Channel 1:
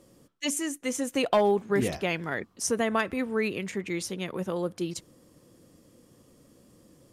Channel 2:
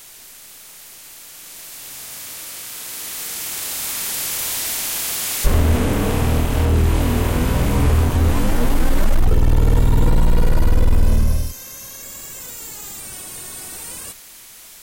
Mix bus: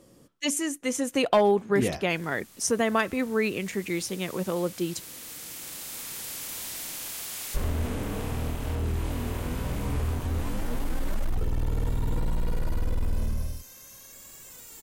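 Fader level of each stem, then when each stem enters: +2.0, -13.0 dB; 0.00, 2.10 s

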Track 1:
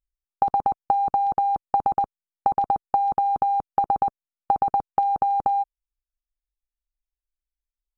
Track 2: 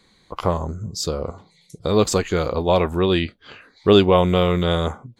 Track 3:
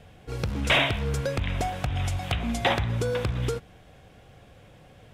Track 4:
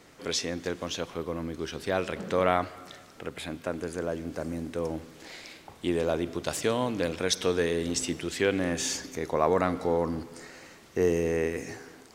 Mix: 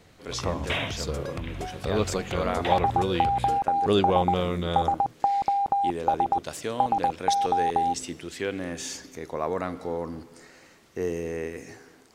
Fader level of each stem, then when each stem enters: -2.5, -9.0, -7.5, -4.5 dB; 2.30, 0.00, 0.00, 0.00 s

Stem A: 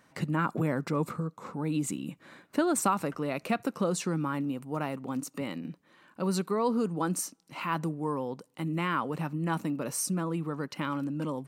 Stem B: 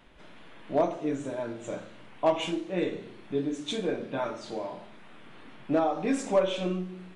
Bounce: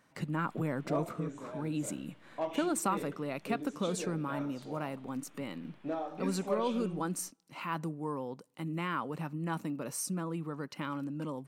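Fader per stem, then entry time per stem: -5.0, -11.0 dB; 0.00, 0.15 s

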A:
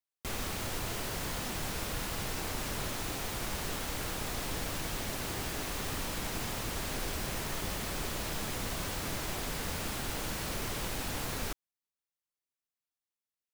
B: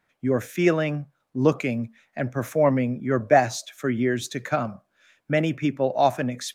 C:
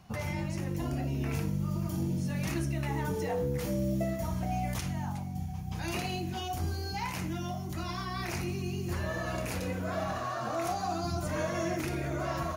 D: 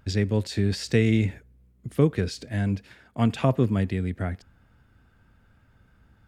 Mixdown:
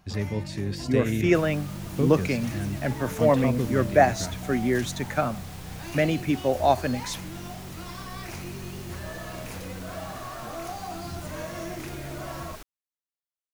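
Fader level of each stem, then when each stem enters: -7.5, -1.0, -3.5, -6.0 dB; 1.10, 0.65, 0.00, 0.00 s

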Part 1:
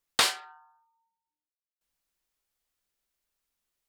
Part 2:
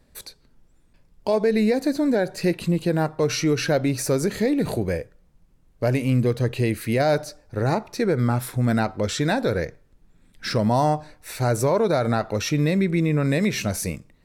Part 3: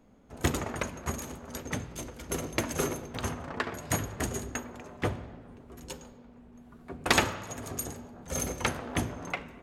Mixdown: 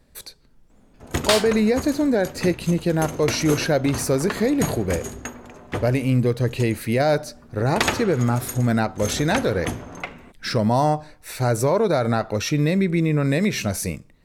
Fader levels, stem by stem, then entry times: +2.5, +1.0, +2.5 dB; 1.10, 0.00, 0.70 s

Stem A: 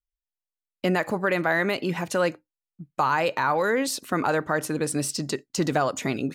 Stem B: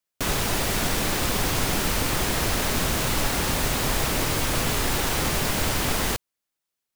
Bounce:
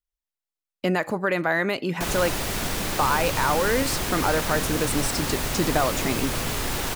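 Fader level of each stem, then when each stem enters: 0.0, -3.0 dB; 0.00, 1.80 s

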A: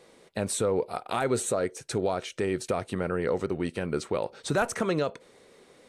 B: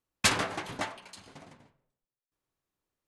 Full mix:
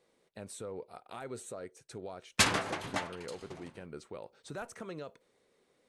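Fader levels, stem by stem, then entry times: -16.0, -1.0 dB; 0.00, 2.15 s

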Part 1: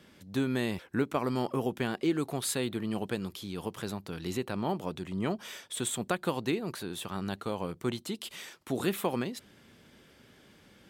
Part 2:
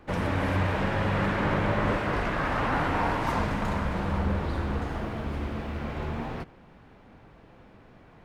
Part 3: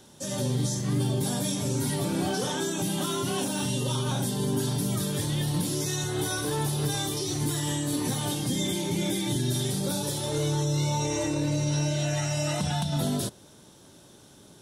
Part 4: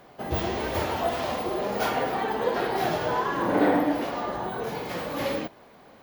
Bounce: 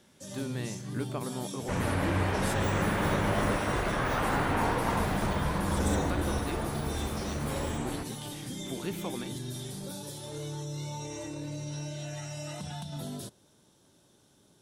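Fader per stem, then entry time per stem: -7.5, -2.5, -11.0, -12.0 dB; 0.00, 1.60, 0.00, 2.30 s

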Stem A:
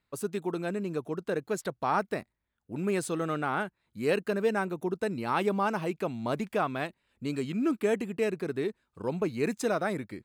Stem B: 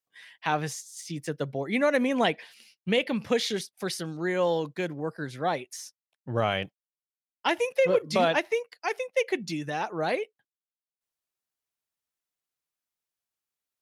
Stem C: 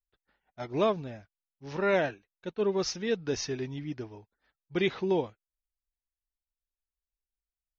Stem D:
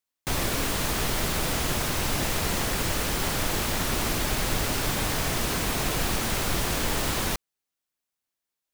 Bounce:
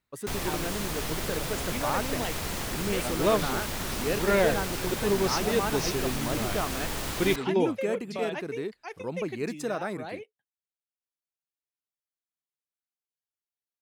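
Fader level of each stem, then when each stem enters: -3.0, -11.0, +2.0, -6.0 dB; 0.00, 0.00, 2.45, 0.00 s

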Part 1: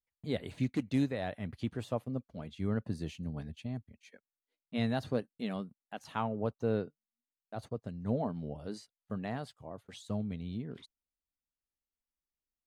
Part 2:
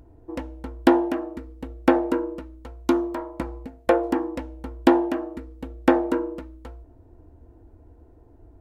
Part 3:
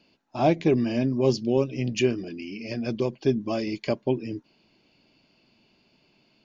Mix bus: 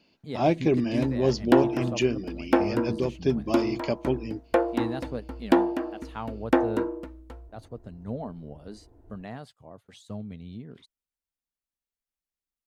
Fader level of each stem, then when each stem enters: -1.5, -3.5, -1.5 dB; 0.00, 0.65, 0.00 s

